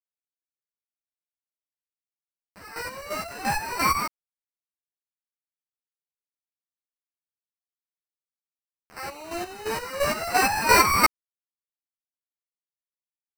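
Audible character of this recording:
a quantiser's noise floor 6 bits, dither none
chopped level 2.9 Hz, depth 65%, duty 35%
aliases and images of a low sample rate 3,400 Hz, jitter 0%
a shimmering, thickened sound

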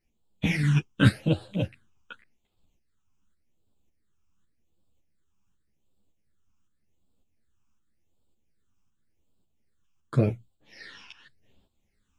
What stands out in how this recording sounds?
phaser sweep stages 8, 0.88 Hz, lowest notch 550–1,900 Hz
tremolo saw up 1.8 Hz, depth 50%
a shimmering, thickened sound

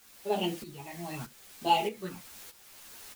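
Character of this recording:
phaser sweep stages 8, 0.75 Hz, lowest notch 410–1,900 Hz
a quantiser's noise floor 8 bits, dither triangular
tremolo saw up 1.6 Hz, depth 75%
a shimmering, thickened sound

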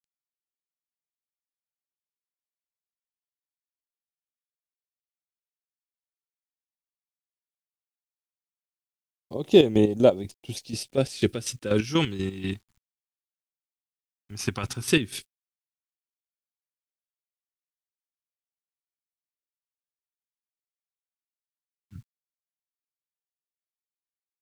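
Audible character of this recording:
chopped level 4.1 Hz, depth 65%, duty 40%
a quantiser's noise floor 12 bits, dither none
phaser sweep stages 2, 0.13 Hz, lowest notch 450–1,400 Hz

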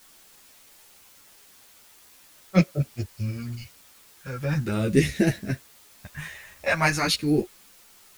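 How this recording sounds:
phaser sweep stages 2, 0.43 Hz, lowest notch 270–1,000 Hz
a quantiser's noise floor 10 bits, dither triangular
a shimmering, thickened sound

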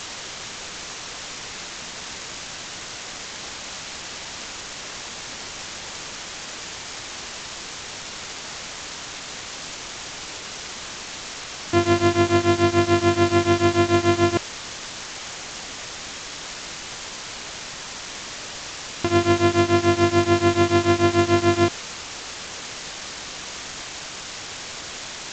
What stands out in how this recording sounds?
a buzz of ramps at a fixed pitch in blocks of 128 samples
tremolo triangle 6.9 Hz, depth 95%
a quantiser's noise floor 6 bits, dither triangular
G.722

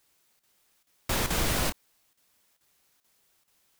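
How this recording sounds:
a quantiser's noise floor 12 bits, dither triangular
chopped level 2.3 Hz, depth 65%, duty 90%

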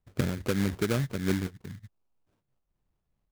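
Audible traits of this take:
phaser sweep stages 2, 2.6 Hz, lowest notch 660–1,400 Hz
aliases and images of a low sample rate 1,900 Hz, jitter 20%
amplitude modulation by smooth noise

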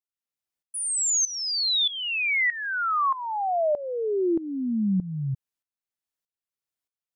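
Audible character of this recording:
tremolo saw up 1.6 Hz, depth 85%

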